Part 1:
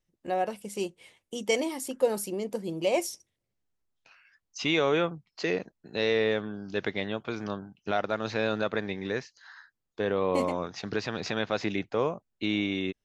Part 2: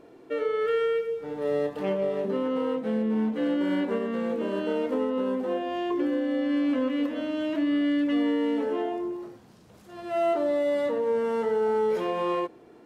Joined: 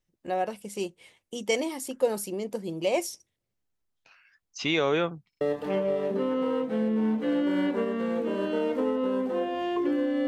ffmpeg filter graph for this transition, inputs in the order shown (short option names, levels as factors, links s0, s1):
-filter_complex "[0:a]apad=whole_dur=10.27,atrim=end=10.27,asplit=3[s0][s1][s2];[s0]atrim=end=5.332[s3];[s1]atrim=start=5.288:end=5.332[s4];[s2]atrim=start=5.288:end=5.332[s5];[1:a]atrim=start=1.548:end=6.41[s6];[s3][s4]acrossfade=d=0.004:c1=hsin:c2=hsin[s7];[s7][s5]acrossfade=d=0.004:c1=hsin:c2=hsin[s8];[s8][s6]acrossfade=d=0.004:c1=hsin:c2=hsin"